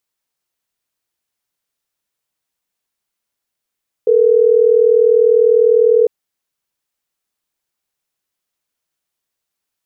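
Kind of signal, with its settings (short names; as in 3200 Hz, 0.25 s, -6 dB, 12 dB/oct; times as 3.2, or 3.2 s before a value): call progress tone ringback tone, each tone -10.5 dBFS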